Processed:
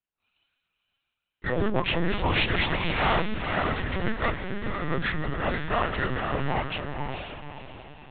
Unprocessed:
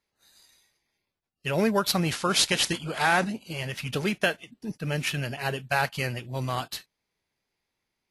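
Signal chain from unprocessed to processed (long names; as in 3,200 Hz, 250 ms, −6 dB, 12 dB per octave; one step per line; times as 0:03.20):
partials spread apart or drawn together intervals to 84%
leveller curve on the samples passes 3
mains-hum notches 50/100/150/200 Hz
on a send: feedback delay with all-pass diffusion 496 ms, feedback 42%, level −4 dB
on the sum: linear-prediction vocoder at 8 kHz pitch kept
level −6.5 dB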